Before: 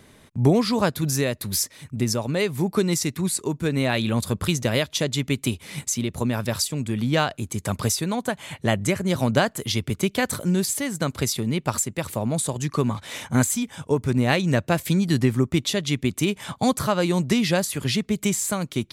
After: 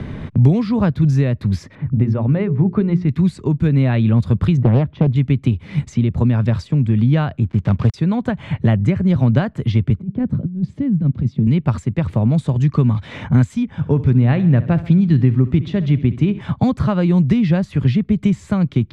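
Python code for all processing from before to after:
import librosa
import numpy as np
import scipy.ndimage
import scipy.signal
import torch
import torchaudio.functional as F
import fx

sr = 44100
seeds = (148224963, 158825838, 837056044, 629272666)

y = fx.chain(x, sr, fx.lowpass(hz=1700.0, slope=12),
    fx.hum_notches(base_hz=60, count=7), at=(1.75, 3.09))
y = fx.chain(y, sr, fx.lowpass(hz=1500.0, slope=12),
    fx.peak_eq(hz=200.0, db=6.0, octaves=2.7),
    fx.doppler_dist(depth_ms=0.6), at=(4.57, 5.16))
y = fx.chain(y, sr, fx.dead_time(dead_ms=0.17),
    fx.high_shelf(hz=9700.0, db=-6.0), at=(7.44, 7.94))
y = fx.chain(y, sr, fx.bandpass_q(hz=180.0, q=1.6),
    fx.over_compress(threshold_db=-29.0, ratio=-0.5), at=(9.99, 11.47))
y = fx.chain(y, sr, fx.lowpass(hz=3200.0, slope=6),
    fx.echo_feedback(ms=66, feedback_pct=55, wet_db=-16.5), at=(13.65, 16.41))
y = scipy.signal.sosfilt(scipy.signal.butter(2, 5400.0, 'lowpass', fs=sr, output='sos'), y)
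y = fx.bass_treble(y, sr, bass_db=15, treble_db=-14)
y = fx.band_squash(y, sr, depth_pct=70)
y = F.gain(torch.from_numpy(y), -2.0).numpy()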